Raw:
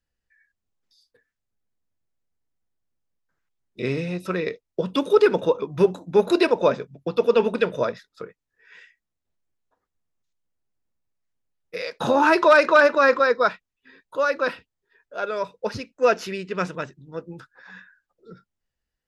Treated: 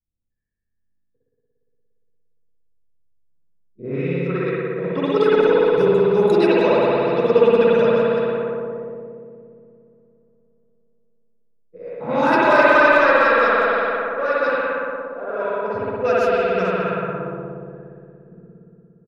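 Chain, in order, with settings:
far-end echo of a speakerphone 170 ms, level −7 dB
spring reverb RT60 3.8 s, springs 58 ms, chirp 55 ms, DRR −9 dB
low-pass that shuts in the quiet parts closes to 300 Hz, open at −8 dBFS
level −5.5 dB

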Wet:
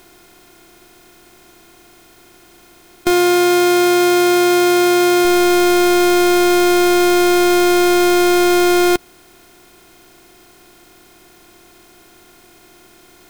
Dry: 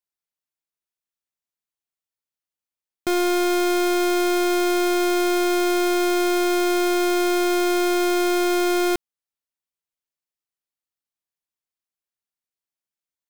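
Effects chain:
compressor on every frequency bin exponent 0.4
0:03.10–0:05.25: high-pass filter 67 Hz
level +7.5 dB

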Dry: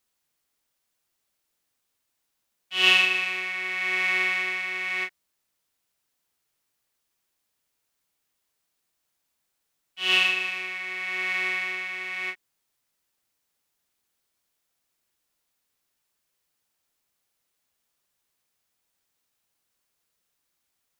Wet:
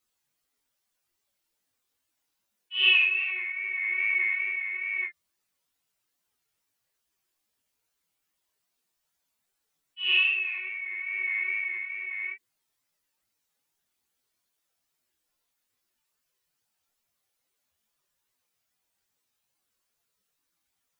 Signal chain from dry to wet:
expanding power law on the bin magnitudes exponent 2.2
chorus effect 2.4 Hz, delay 18.5 ms, depth 6.6 ms
level +1.5 dB

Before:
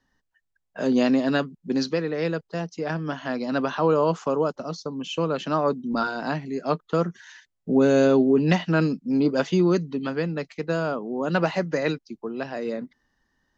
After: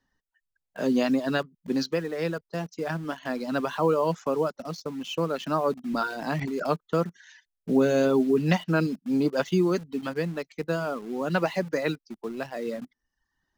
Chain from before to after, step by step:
reverb reduction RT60 0.73 s
in parallel at −10.5 dB: bit reduction 6 bits
0:06.08–0:06.67: on the sum: level that may fall only so fast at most 21 dB per second
level −4 dB

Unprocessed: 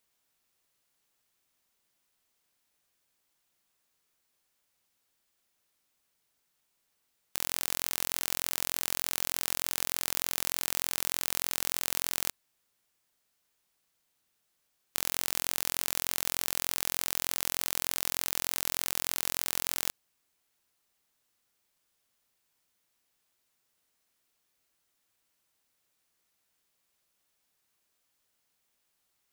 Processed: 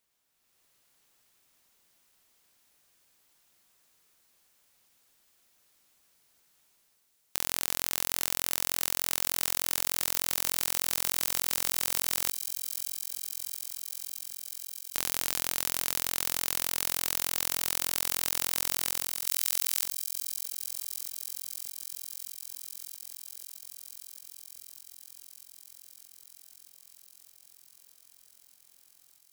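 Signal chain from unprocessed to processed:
0:19.27–0:19.84: high-shelf EQ 2,100 Hz +12 dB
automatic gain control gain up to 9 dB
delay with a high-pass on its return 622 ms, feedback 81%, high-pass 4,500 Hz, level −7.5 dB
level −1 dB

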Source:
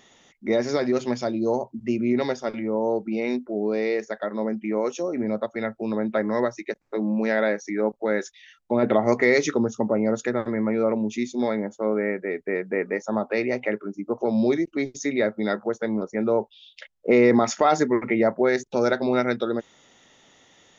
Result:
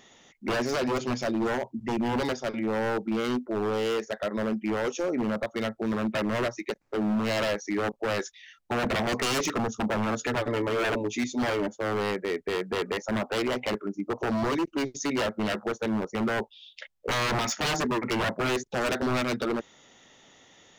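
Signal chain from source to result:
0:10.20–0:11.68: comb filter 6.9 ms, depth 84%
wave folding −21.5 dBFS

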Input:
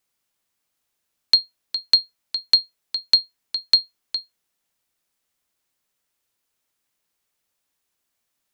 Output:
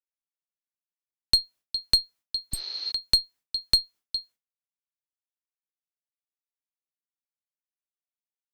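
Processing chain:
one-sided soft clipper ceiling −12.5 dBFS
healed spectral selection 0:02.55–0:02.89, 310–6,500 Hz
downward expander −43 dBFS
level −2.5 dB

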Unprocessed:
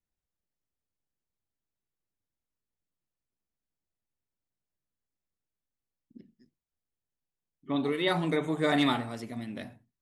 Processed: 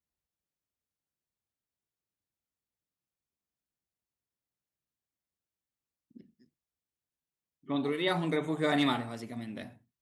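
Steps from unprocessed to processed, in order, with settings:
high-pass filter 48 Hz
level −2 dB

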